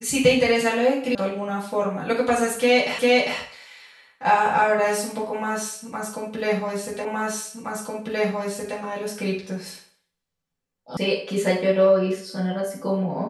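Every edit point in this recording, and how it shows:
1.15 sound cut off
2.99 repeat of the last 0.4 s
7.05 repeat of the last 1.72 s
10.97 sound cut off

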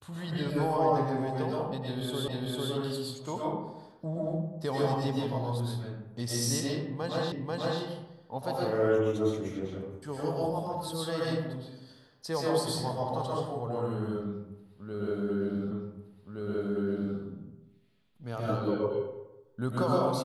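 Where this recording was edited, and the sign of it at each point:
2.28 repeat of the last 0.45 s
7.32 repeat of the last 0.49 s
15.71 repeat of the last 1.47 s

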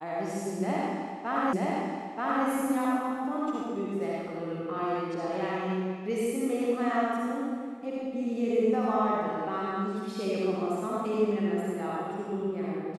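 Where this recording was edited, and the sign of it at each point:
1.53 repeat of the last 0.93 s

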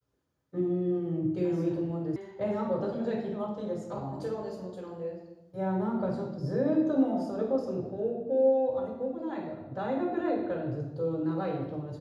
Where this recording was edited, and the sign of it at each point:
2.16 sound cut off

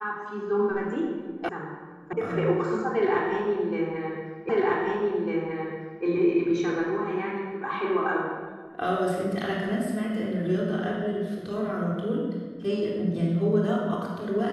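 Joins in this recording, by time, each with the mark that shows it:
1.49 sound cut off
2.13 sound cut off
4.49 repeat of the last 1.55 s

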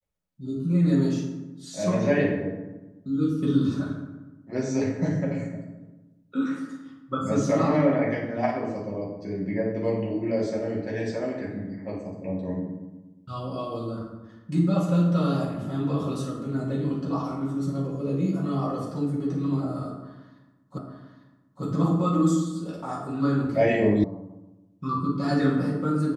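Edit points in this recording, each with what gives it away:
20.78 repeat of the last 0.85 s
24.04 sound cut off

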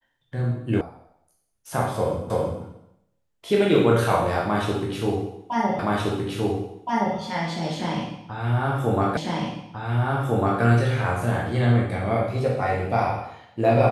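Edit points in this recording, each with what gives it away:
0.81 sound cut off
2.3 repeat of the last 0.33 s
5.79 repeat of the last 1.37 s
9.17 repeat of the last 1.45 s

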